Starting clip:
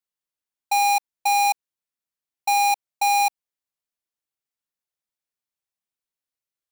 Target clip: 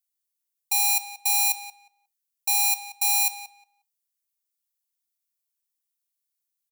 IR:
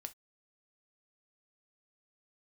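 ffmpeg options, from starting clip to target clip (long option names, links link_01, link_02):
-filter_complex "[0:a]aderivative,asplit=2[link_01][link_02];[link_02]adelay=179,lowpass=frequency=3000:poles=1,volume=-10.5dB,asplit=2[link_03][link_04];[link_04]adelay=179,lowpass=frequency=3000:poles=1,volume=0.19,asplit=2[link_05][link_06];[link_06]adelay=179,lowpass=frequency=3000:poles=1,volume=0.19[link_07];[link_01][link_03][link_05][link_07]amix=inputs=4:normalize=0,asplit=2[link_08][link_09];[1:a]atrim=start_sample=2205[link_10];[link_09][link_10]afir=irnorm=-1:irlink=0,volume=6.5dB[link_11];[link_08][link_11]amix=inputs=2:normalize=0,volume=-1.5dB"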